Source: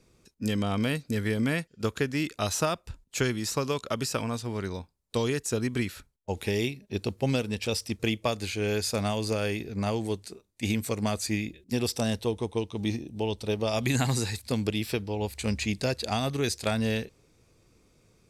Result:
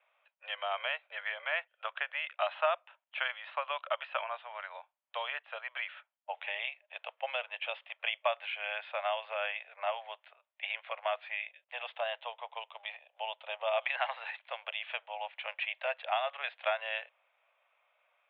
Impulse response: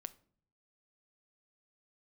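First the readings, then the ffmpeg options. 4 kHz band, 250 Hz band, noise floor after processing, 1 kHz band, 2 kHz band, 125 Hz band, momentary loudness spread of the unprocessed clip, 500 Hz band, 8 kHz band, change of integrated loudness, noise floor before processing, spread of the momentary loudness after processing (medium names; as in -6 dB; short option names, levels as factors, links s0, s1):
-5.5 dB, under -40 dB, -83 dBFS, 0.0 dB, 0.0 dB, under -40 dB, 6 LU, -7.5 dB, under -40 dB, -6.5 dB, -66 dBFS, 11 LU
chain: -af "asuperpass=centerf=1400:order=20:qfactor=0.51"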